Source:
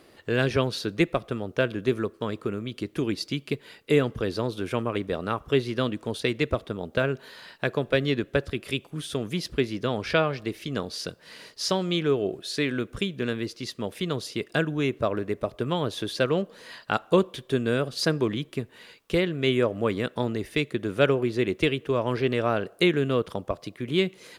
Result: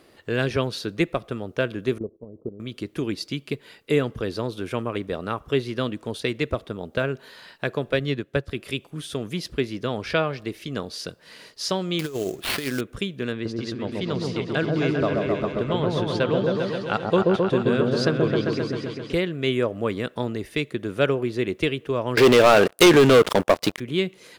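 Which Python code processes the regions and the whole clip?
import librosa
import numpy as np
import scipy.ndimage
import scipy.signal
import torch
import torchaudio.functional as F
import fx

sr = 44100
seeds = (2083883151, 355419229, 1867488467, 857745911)

y = fx.chain(x, sr, fx.cheby2_lowpass(hz=1700.0, order=4, stop_db=50),
    fx.level_steps(step_db=14), at=(1.98, 2.6))
y = fx.chain(y, sr, fx.highpass(hz=50.0, slope=12),
    fx.peak_eq(hz=130.0, db=5.5, octaves=0.39),
    fx.upward_expand(threshold_db=-38.0, expansion=1.5), at=(7.99, 8.48))
y = fx.chain(y, sr, fx.high_shelf(hz=4200.0, db=10.5),
    fx.over_compress(threshold_db=-26.0, ratio=-0.5),
    fx.sample_hold(seeds[0], rate_hz=7000.0, jitter_pct=20), at=(11.99, 12.81))
y = fx.chain(y, sr, fx.lowpass(hz=6000.0, slope=12),
    fx.echo_opening(ms=132, hz=750, octaves=1, feedback_pct=70, wet_db=0), at=(13.32, 19.13))
y = fx.chain(y, sr, fx.highpass(hz=280.0, slope=6),
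    fx.leveller(passes=5), at=(22.17, 23.8))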